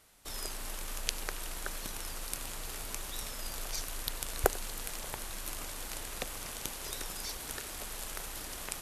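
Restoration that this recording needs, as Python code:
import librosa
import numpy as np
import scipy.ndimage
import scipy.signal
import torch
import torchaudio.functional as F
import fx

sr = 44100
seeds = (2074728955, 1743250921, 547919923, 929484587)

y = fx.fix_declip(x, sr, threshold_db=-7.0)
y = fx.fix_echo_inverse(y, sr, delay_ms=93, level_db=-21.5)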